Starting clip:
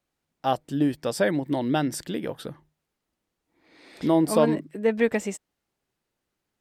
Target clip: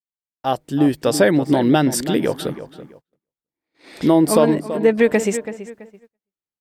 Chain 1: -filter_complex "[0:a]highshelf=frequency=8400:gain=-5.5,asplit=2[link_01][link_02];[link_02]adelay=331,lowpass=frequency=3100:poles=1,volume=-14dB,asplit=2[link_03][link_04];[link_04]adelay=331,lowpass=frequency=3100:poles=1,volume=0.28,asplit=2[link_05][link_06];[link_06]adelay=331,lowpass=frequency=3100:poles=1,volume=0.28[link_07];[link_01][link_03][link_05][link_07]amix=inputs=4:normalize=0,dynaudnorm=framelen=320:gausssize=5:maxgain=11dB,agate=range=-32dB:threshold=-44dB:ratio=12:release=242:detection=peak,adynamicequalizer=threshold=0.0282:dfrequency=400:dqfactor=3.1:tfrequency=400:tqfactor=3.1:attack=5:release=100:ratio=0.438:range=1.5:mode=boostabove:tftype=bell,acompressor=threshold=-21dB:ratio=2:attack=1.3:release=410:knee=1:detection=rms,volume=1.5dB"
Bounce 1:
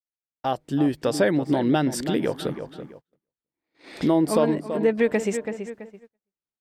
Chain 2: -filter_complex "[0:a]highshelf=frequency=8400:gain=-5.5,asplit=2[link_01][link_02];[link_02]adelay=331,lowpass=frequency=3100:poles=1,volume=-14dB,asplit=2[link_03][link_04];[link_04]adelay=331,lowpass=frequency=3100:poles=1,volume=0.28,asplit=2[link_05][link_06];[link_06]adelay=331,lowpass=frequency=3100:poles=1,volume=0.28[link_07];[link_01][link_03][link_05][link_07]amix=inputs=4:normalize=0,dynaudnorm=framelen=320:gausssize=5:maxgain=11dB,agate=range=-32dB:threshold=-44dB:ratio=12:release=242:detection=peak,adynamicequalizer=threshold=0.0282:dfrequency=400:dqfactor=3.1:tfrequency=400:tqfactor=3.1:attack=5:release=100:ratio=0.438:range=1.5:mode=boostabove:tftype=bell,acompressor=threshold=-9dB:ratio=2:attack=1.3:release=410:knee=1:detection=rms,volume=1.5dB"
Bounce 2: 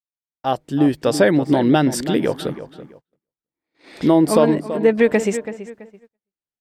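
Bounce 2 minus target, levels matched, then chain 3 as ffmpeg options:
8,000 Hz band −4.0 dB
-filter_complex "[0:a]highshelf=frequency=8400:gain=3,asplit=2[link_01][link_02];[link_02]adelay=331,lowpass=frequency=3100:poles=1,volume=-14dB,asplit=2[link_03][link_04];[link_04]adelay=331,lowpass=frequency=3100:poles=1,volume=0.28,asplit=2[link_05][link_06];[link_06]adelay=331,lowpass=frequency=3100:poles=1,volume=0.28[link_07];[link_01][link_03][link_05][link_07]amix=inputs=4:normalize=0,dynaudnorm=framelen=320:gausssize=5:maxgain=11dB,agate=range=-32dB:threshold=-44dB:ratio=12:release=242:detection=peak,adynamicequalizer=threshold=0.0282:dfrequency=400:dqfactor=3.1:tfrequency=400:tqfactor=3.1:attack=5:release=100:ratio=0.438:range=1.5:mode=boostabove:tftype=bell,acompressor=threshold=-9dB:ratio=2:attack=1.3:release=410:knee=1:detection=rms,volume=1.5dB"

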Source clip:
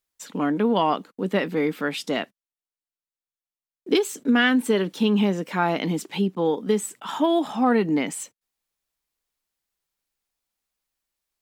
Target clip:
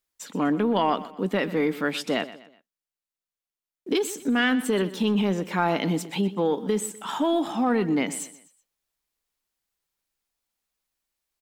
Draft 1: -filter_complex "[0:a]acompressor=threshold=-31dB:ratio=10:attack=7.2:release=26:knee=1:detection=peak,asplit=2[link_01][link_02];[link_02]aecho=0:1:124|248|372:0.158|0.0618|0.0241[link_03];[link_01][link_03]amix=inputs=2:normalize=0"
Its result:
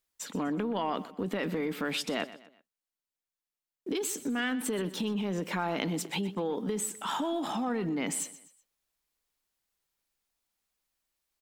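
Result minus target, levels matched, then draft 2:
downward compressor: peak gain reduction +9 dB
-filter_complex "[0:a]acompressor=threshold=-21dB:ratio=10:attack=7.2:release=26:knee=1:detection=peak,asplit=2[link_01][link_02];[link_02]aecho=0:1:124|248|372:0.158|0.0618|0.0241[link_03];[link_01][link_03]amix=inputs=2:normalize=0"

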